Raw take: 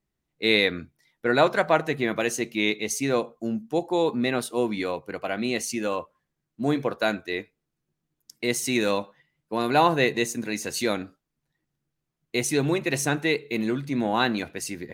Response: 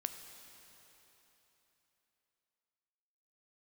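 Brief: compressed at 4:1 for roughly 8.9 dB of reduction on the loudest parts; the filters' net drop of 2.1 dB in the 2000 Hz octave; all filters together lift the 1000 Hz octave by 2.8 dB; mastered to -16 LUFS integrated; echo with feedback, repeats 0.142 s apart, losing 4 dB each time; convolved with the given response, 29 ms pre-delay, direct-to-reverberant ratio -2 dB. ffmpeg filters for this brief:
-filter_complex "[0:a]equalizer=f=1k:t=o:g=4.5,equalizer=f=2k:t=o:g=-4,acompressor=threshold=-23dB:ratio=4,aecho=1:1:142|284|426|568|710|852|994|1136|1278:0.631|0.398|0.25|0.158|0.0994|0.0626|0.0394|0.0249|0.0157,asplit=2[a][b];[1:a]atrim=start_sample=2205,adelay=29[c];[b][c]afir=irnorm=-1:irlink=0,volume=2.5dB[d];[a][d]amix=inputs=2:normalize=0,volume=7dB"

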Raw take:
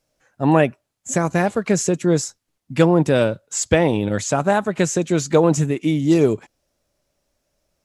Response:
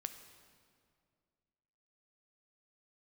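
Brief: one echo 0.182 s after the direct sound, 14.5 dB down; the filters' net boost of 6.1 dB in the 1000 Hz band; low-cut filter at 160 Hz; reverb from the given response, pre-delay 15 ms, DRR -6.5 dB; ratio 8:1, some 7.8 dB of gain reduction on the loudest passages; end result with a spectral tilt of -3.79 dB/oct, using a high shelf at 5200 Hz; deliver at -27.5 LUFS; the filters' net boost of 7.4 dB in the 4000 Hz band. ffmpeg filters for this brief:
-filter_complex "[0:a]highpass=160,equalizer=f=1k:t=o:g=7.5,equalizer=f=4k:t=o:g=6.5,highshelf=f=5.2k:g=5.5,acompressor=threshold=-15dB:ratio=8,aecho=1:1:182:0.188,asplit=2[a][b];[1:a]atrim=start_sample=2205,adelay=15[c];[b][c]afir=irnorm=-1:irlink=0,volume=9dB[d];[a][d]amix=inputs=2:normalize=0,volume=-13.5dB"

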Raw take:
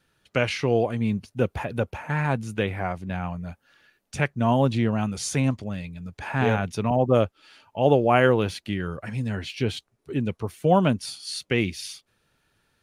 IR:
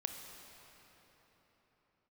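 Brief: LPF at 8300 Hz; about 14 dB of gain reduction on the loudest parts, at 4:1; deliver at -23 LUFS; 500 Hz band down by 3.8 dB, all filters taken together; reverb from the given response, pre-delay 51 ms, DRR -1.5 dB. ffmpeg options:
-filter_complex "[0:a]lowpass=8.3k,equalizer=f=500:t=o:g=-4.5,acompressor=threshold=-33dB:ratio=4,asplit=2[a][b];[1:a]atrim=start_sample=2205,adelay=51[c];[b][c]afir=irnorm=-1:irlink=0,volume=1.5dB[d];[a][d]amix=inputs=2:normalize=0,volume=10dB"

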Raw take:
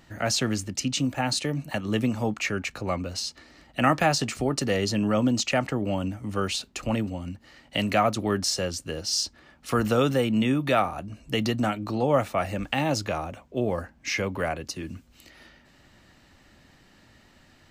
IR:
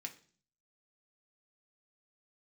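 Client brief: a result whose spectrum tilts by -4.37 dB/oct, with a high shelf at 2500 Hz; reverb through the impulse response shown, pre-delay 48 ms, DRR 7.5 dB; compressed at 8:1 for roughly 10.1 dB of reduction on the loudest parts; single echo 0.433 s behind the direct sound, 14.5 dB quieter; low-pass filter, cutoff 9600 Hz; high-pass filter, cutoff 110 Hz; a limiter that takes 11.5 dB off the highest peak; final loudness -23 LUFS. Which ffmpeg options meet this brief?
-filter_complex "[0:a]highpass=110,lowpass=9.6k,highshelf=f=2.5k:g=-3,acompressor=threshold=-28dB:ratio=8,alimiter=level_in=1dB:limit=-24dB:level=0:latency=1,volume=-1dB,aecho=1:1:433:0.188,asplit=2[a][b];[1:a]atrim=start_sample=2205,adelay=48[c];[b][c]afir=irnorm=-1:irlink=0,volume=-4.5dB[d];[a][d]amix=inputs=2:normalize=0,volume=11.5dB"

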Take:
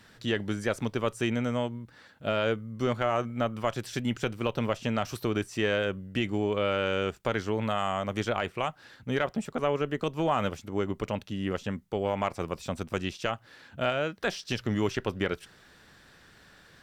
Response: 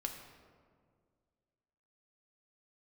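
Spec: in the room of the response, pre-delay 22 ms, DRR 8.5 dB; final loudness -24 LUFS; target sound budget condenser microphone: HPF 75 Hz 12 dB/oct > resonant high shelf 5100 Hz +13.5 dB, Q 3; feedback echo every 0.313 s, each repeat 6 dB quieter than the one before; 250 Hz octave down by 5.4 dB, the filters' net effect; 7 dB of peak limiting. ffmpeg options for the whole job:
-filter_complex "[0:a]equalizer=f=250:t=o:g=-7,alimiter=limit=-22dB:level=0:latency=1,aecho=1:1:313|626|939|1252|1565|1878:0.501|0.251|0.125|0.0626|0.0313|0.0157,asplit=2[a][b];[1:a]atrim=start_sample=2205,adelay=22[c];[b][c]afir=irnorm=-1:irlink=0,volume=-8dB[d];[a][d]amix=inputs=2:normalize=0,highpass=75,highshelf=f=5.1k:t=q:w=3:g=13.5,volume=7.5dB"

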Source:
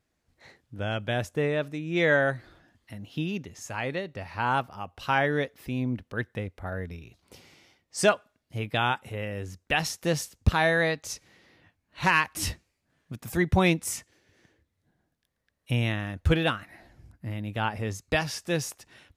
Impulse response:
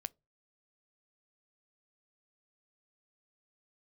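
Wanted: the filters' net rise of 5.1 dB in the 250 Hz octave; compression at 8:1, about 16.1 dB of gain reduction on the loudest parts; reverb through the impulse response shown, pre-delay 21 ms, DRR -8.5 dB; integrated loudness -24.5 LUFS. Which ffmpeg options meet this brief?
-filter_complex "[0:a]equalizer=f=250:t=o:g=7.5,acompressor=threshold=-31dB:ratio=8,asplit=2[a][b];[1:a]atrim=start_sample=2205,adelay=21[c];[b][c]afir=irnorm=-1:irlink=0,volume=11.5dB[d];[a][d]amix=inputs=2:normalize=0,volume=3dB"

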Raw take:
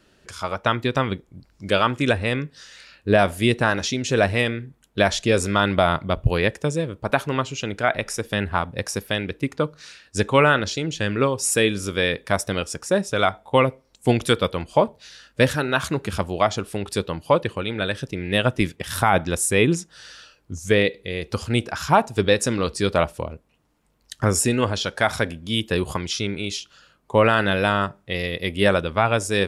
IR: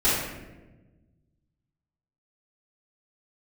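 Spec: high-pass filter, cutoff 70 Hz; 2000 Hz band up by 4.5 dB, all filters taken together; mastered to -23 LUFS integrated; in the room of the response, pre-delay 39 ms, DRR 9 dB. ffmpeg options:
-filter_complex "[0:a]highpass=70,equalizer=f=2k:t=o:g=6,asplit=2[a][b];[1:a]atrim=start_sample=2205,adelay=39[c];[b][c]afir=irnorm=-1:irlink=0,volume=-24.5dB[d];[a][d]amix=inputs=2:normalize=0,volume=-3dB"

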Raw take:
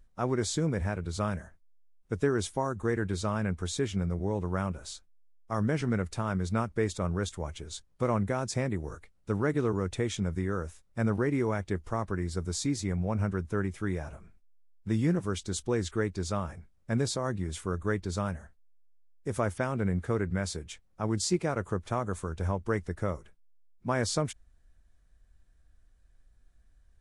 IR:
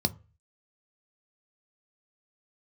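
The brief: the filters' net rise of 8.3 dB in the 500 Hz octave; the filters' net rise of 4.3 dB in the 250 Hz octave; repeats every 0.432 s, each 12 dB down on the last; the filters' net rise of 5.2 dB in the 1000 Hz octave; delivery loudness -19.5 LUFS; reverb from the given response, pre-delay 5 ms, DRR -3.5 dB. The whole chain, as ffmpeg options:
-filter_complex "[0:a]equalizer=f=250:t=o:g=3,equalizer=f=500:t=o:g=8.5,equalizer=f=1k:t=o:g=4,aecho=1:1:432|864|1296:0.251|0.0628|0.0157,asplit=2[a][b];[1:a]atrim=start_sample=2205,adelay=5[c];[b][c]afir=irnorm=-1:irlink=0,volume=-3.5dB[d];[a][d]amix=inputs=2:normalize=0,volume=-3.5dB"

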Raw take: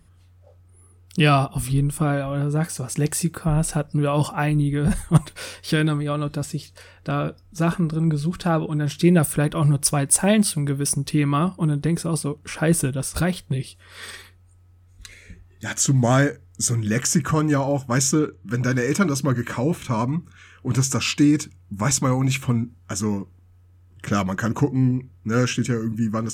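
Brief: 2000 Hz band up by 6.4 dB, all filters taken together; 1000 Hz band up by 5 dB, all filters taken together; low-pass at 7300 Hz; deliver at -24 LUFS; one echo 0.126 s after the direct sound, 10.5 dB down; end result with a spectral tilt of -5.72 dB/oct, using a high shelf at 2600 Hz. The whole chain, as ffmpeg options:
-af "lowpass=7.3k,equalizer=f=1k:t=o:g=4.5,equalizer=f=2k:t=o:g=9,highshelf=f=2.6k:g=-4.5,aecho=1:1:126:0.299,volume=-3dB"

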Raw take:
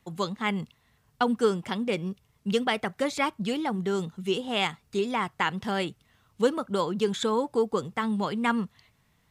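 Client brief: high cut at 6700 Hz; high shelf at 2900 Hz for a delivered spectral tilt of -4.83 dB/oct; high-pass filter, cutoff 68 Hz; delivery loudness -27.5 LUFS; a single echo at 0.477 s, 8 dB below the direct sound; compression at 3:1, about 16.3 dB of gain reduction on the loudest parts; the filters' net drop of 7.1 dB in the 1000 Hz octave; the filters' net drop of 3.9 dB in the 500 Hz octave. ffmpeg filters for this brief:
-af "highpass=68,lowpass=6.7k,equalizer=f=500:t=o:g=-3,equalizer=f=1k:t=o:g=-7,highshelf=f=2.9k:g=-8.5,acompressor=threshold=-45dB:ratio=3,aecho=1:1:477:0.398,volume=17dB"

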